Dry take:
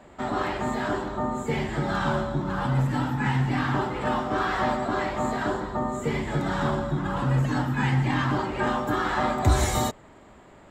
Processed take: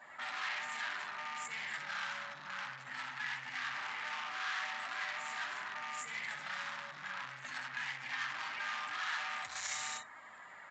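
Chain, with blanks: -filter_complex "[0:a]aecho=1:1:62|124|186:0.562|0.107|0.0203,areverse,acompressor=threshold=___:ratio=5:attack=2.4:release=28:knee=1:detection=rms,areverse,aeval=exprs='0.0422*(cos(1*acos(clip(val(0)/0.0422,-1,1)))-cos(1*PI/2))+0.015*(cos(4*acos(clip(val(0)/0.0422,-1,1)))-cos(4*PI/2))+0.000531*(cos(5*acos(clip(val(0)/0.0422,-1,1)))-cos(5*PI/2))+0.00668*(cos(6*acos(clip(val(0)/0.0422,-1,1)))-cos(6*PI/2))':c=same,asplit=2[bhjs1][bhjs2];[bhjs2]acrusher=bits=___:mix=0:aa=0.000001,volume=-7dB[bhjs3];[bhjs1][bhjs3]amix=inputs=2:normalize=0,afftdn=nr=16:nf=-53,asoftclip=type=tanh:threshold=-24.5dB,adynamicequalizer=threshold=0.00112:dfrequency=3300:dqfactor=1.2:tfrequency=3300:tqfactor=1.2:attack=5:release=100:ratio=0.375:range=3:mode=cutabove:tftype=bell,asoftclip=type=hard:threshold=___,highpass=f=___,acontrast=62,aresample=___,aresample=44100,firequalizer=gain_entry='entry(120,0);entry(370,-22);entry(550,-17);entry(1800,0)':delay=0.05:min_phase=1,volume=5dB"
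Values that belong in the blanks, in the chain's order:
-38dB, 4, -37.5dB, 820, 16000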